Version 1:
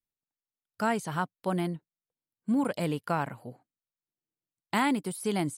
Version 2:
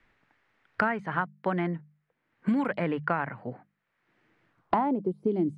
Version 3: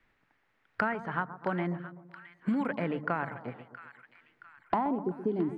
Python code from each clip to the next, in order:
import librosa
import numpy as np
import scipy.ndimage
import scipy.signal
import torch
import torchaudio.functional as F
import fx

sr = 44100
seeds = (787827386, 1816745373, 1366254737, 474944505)

y1 = fx.filter_sweep_lowpass(x, sr, from_hz=1900.0, to_hz=360.0, start_s=4.45, end_s=5.14, q=2.5)
y1 = fx.hum_notches(y1, sr, base_hz=50, count=4)
y1 = fx.band_squash(y1, sr, depth_pct=100)
y1 = F.gain(torch.from_numpy(y1), -1.0).numpy()
y2 = fx.echo_split(y1, sr, split_hz=1300.0, low_ms=126, high_ms=671, feedback_pct=52, wet_db=-12.0)
y2 = F.gain(torch.from_numpy(y2), -3.5).numpy()